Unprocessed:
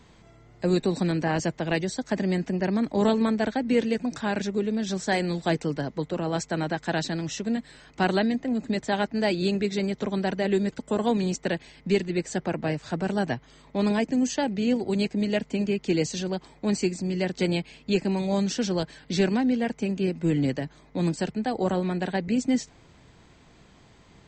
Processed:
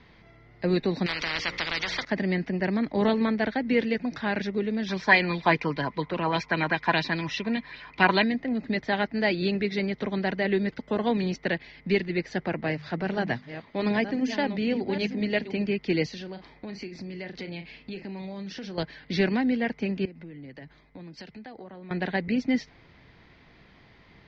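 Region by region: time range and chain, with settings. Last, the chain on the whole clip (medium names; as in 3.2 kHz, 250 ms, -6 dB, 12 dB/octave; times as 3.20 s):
1.06–2.05 s: treble shelf 4.9 kHz -5.5 dB + hum notches 60/120/180/240/300/360/420/480/540 Hz + spectrum-flattening compressor 10:1
4.88–8.24 s: small resonant body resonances 1/2.4 kHz, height 13 dB + sweeping bell 5 Hz 920–3900 Hz +10 dB
12.60–15.58 s: chunks repeated in reverse 520 ms, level -10.5 dB + hum notches 50/100/150/200/250 Hz
16.09–18.78 s: doubling 36 ms -12 dB + compression, threshold -33 dBFS
20.05–21.91 s: compression 10:1, threshold -38 dBFS + three bands expanded up and down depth 70%
whole clip: steep low-pass 5.3 kHz 48 dB/octave; peaking EQ 2 kHz +8 dB 0.55 oct; trim -1.5 dB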